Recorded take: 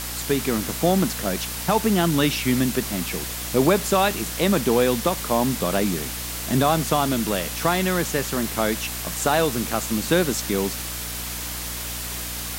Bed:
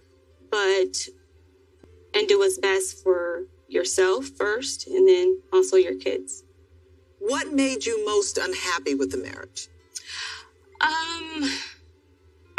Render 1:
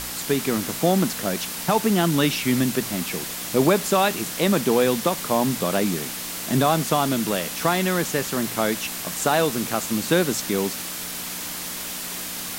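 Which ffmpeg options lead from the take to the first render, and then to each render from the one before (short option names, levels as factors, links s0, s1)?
-af "bandreject=f=60:t=h:w=4,bandreject=f=120:t=h:w=4"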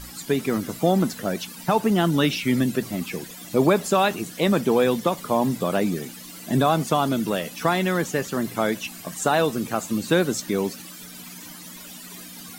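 -af "afftdn=nr=15:nf=-32"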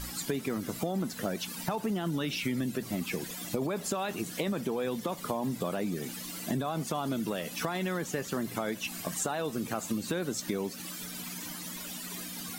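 -af "alimiter=limit=0.211:level=0:latency=1:release=14,acompressor=threshold=0.0355:ratio=6"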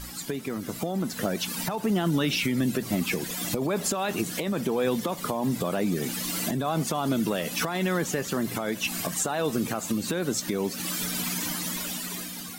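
-af "dynaudnorm=f=490:g=5:m=3.35,alimiter=limit=0.158:level=0:latency=1:release=448"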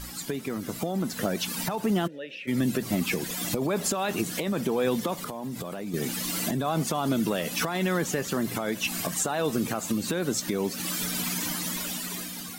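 -filter_complex "[0:a]asplit=3[s0][s1][s2];[s0]afade=t=out:st=2.06:d=0.02[s3];[s1]asplit=3[s4][s5][s6];[s4]bandpass=f=530:t=q:w=8,volume=1[s7];[s5]bandpass=f=1840:t=q:w=8,volume=0.501[s8];[s6]bandpass=f=2480:t=q:w=8,volume=0.355[s9];[s7][s8][s9]amix=inputs=3:normalize=0,afade=t=in:st=2.06:d=0.02,afade=t=out:st=2.47:d=0.02[s10];[s2]afade=t=in:st=2.47:d=0.02[s11];[s3][s10][s11]amix=inputs=3:normalize=0,asettb=1/sr,asplit=3[s12][s13][s14];[s12]atrim=end=5.154[s15];[s13]atrim=start=5.15:end=5.94,asetpts=PTS-STARTPTS,afade=t=in:d=0.004:c=qsin,afade=t=out:st=0.786:d=0.004:c=qsin,acompressor=threshold=0.0282:ratio=6:attack=3.2:release=140:knee=1:detection=peak[s16];[s14]atrim=start=5.936[s17];[s15][s16]acrossfade=d=0.004:c1=hsin:c2=qsin[s18];[s18][s17]acrossfade=d=0.004:c1=qsin:c2=hsin"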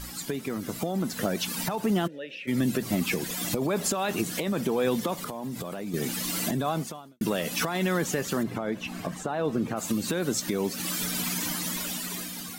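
-filter_complex "[0:a]asplit=3[s0][s1][s2];[s0]afade=t=out:st=8.42:d=0.02[s3];[s1]lowpass=f=1300:p=1,afade=t=in:st=8.42:d=0.02,afade=t=out:st=9.76:d=0.02[s4];[s2]afade=t=in:st=9.76:d=0.02[s5];[s3][s4][s5]amix=inputs=3:normalize=0,asplit=2[s6][s7];[s6]atrim=end=7.21,asetpts=PTS-STARTPTS,afade=t=out:st=6.69:d=0.52:c=qua[s8];[s7]atrim=start=7.21,asetpts=PTS-STARTPTS,afade=t=in:d=0.004:c=hsin[s9];[s8][s9]concat=n=2:v=0:a=1"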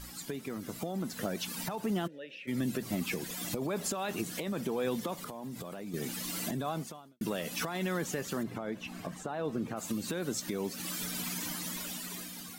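-af "volume=0.447"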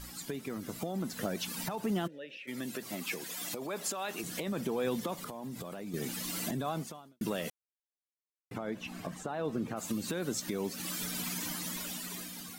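-filter_complex "[0:a]asettb=1/sr,asplit=3[s0][s1][s2];[s0]atrim=end=2.374[s3];[s1]atrim=start=2.37:end=4.24,asetpts=PTS-STARTPTS,afade=t=in:d=0.004:c=qsin,afade=t=out:st=1.866:d=0.004:c=qsin,highpass=f=520:p=1[s4];[s2]atrim=start=4.236[s5];[s3][s4]acrossfade=d=0.004:c1=hsin:c2=qsin[s6];[s6][s5]acrossfade=d=0.004:c1=qsin:c2=hsin,asplit=3[s7][s8][s9];[s7]atrim=end=7.5,asetpts=PTS-STARTPTS,afade=t=out:st=7.496:d=0.004:c=hsin[s10];[s8]atrim=start=7.5:end=8.51,asetpts=PTS-STARTPTS,volume=0[s11];[s9]atrim=start=8.51,asetpts=PTS-STARTPTS,afade=t=in:d=0.004:c=hsin[s12];[s10][s11][s12]concat=n=3:v=0:a=1"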